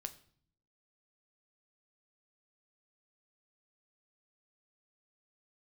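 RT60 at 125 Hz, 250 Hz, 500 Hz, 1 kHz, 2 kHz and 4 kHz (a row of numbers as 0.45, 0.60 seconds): 0.90, 0.90, 0.55, 0.50, 0.50, 0.50 seconds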